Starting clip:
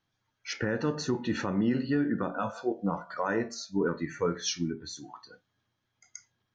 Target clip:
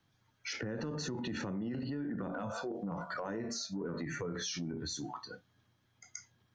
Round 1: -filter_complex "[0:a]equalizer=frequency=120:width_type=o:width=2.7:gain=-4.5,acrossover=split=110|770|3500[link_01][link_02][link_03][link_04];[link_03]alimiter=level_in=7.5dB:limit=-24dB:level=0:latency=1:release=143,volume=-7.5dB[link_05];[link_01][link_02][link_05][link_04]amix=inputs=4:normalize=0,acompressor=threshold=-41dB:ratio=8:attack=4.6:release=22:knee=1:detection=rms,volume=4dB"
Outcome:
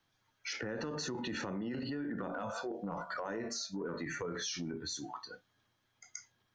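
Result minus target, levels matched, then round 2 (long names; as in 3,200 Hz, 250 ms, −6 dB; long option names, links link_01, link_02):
125 Hz band −4.0 dB
-filter_complex "[0:a]equalizer=frequency=120:width_type=o:width=2.7:gain=5,acrossover=split=110|770|3500[link_01][link_02][link_03][link_04];[link_03]alimiter=level_in=7.5dB:limit=-24dB:level=0:latency=1:release=143,volume=-7.5dB[link_05];[link_01][link_02][link_05][link_04]amix=inputs=4:normalize=0,acompressor=threshold=-41dB:ratio=8:attack=4.6:release=22:knee=1:detection=rms,volume=4dB"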